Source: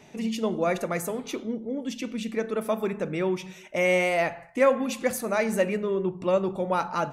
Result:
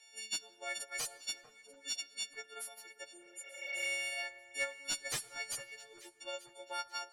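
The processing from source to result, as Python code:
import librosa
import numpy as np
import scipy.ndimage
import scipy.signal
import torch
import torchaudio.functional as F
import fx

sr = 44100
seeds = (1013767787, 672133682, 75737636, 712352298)

y = fx.freq_snap(x, sr, grid_st=4)
y = scipy.signal.sosfilt(scipy.signal.butter(4, 320.0, 'highpass', fs=sr, output='sos'), y)
y = np.diff(y, prepend=0.0)
y = fx.notch(y, sr, hz=1100.0, q=9.9)
y = fx.transient(y, sr, attack_db=7, sustain_db=-8)
y = 10.0 ** (-16.5 / 20.0) * (np.abs((y / 10.0 ** (-16.5 / 20.0) + 3.0) % 4.0 - 2.0) - 1.0)
y = fx.spec_repair(y, sr, seeds[0], start_s=3.14, length_s=0.68, low_hz=420.0, high_hz=6500.0, source='both')
y = 10.0 ** (-22.0 / 20.0) * np.tanh(y / 10.0 ** (-22.0 / 20.0))
y = fx.air_absorb(y, sr, metres=70.0)
y = fx.echo_alternate(y, sr, ms=444, hz=1700.0, feedback_pct=54, wet_db=-13)
y = fx.rev_plate(y, sr, seeds[1], rt60_s=2.5, hf_ratio=0.7, predelay_ms=0, drr_db=19.5)
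y = y * 10.0 ** (-3.0 / 20.0)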